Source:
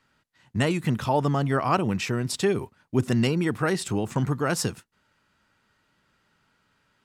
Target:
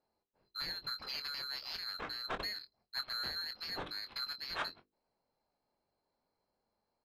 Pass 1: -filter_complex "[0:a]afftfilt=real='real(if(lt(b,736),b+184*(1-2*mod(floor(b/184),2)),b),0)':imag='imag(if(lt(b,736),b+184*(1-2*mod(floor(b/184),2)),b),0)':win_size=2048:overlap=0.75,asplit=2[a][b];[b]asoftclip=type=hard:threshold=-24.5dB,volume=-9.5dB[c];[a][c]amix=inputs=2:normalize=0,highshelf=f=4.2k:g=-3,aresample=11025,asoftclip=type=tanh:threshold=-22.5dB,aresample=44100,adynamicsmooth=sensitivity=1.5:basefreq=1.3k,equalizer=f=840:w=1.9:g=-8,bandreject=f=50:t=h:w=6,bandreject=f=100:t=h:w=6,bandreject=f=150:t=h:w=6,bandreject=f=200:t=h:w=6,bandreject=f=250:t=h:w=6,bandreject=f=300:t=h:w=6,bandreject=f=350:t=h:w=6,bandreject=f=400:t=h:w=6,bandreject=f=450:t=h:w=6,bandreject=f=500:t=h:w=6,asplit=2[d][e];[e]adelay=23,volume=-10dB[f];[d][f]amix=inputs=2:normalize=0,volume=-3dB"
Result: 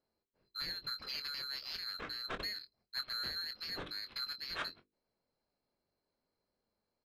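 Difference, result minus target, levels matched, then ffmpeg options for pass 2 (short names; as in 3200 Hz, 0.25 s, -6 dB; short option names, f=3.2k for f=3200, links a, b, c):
1000 Hz band -3.0 dB
-filter_complex "[0:a]afftfilt=real='real(if(lt(b,736),b+184*(1-2*mod(floor(b/184),2)),b),0)':imag='imag(if(lt(b,736),b+184*(1-2*mod(floor(b/184),2)),b),0)':win_size=2048:overlap=0.75,asplit=2[a][b];[b]asoftclip=type=hard:threshold=-24.5dB,volume=-9.5dB[c];[a][c]amix=inputs=2:normalize=0,highshelf=f=4.2k:g=-3,aresample=11025,asoftclip=type=tanh:threshold=-22.5dB,aresample=44100,adynamicsmooth=sensitivity=1.5:basefreq=1.3k,bandreject=f=50:t=h:w=6,bandreject=f=100:t=h:w=6,bandreject=f=150:t=h:w=6,bandreject=f=200:t=h:w=6,bandreject=f=250:t=h:w=6,bandreject=f=300:t=h:w=6,bandreject=f=350:t=h:w=6,bandreject=f=400:t=h:w=6,bandreject=f=450:t=h:w=6,bandreject=f=500:t=h:w=6,asplit=2[d][e];[e]adelay=23,volume=-10dB[f];[d][f]amix=inputs=2:normalize=0,volume=-3dB"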